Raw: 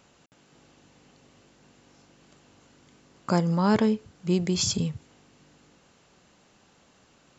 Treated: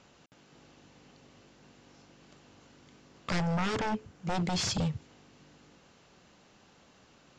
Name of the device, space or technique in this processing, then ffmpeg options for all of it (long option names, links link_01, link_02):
synthesiser wavefolder: -filter_complex "[0:a]aeval=exprs='0.0596*(abs(mod(val(0)/0.0596+3,4)-2)-1)':channel_layout=same,lowpass=frequency=6700:width=0.5412,lowpass=frequency=6700:width=1.3066,asettb=1/sr,asplit=3[link_01][link_02][link_03];[link_01]atrim=end=3.414[link_04];[link_02]atrim=start=3.41:end=4.35,asetpts=PTS-STARTPTS,afade=type=in:duration=0.004:curve=qsin,afade=type=out:start_time=0.936:duration=0.004:curve=qsin,equalizer=frequency=4200:width=1.6:gain=-4.5[link_05];[link_03]atrim=start=4.346[link_06];[link_04][link_05]acrossfade=duration=0.004:curve1=hsin:curve2=qsin[link_07];[link_07][link_06]acrossfade=duration=0.004:curve1=qsin:curve2=hsin"